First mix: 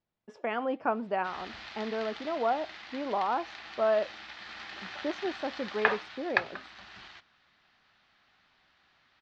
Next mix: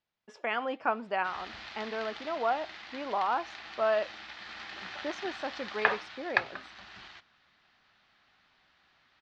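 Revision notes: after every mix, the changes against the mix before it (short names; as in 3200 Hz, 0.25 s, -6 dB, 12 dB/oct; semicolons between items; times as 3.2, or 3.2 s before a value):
speech: add tilt shelf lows -6.5 dB, about 850 Hz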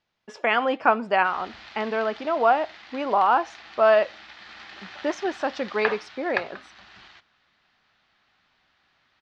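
speech +10.0 dB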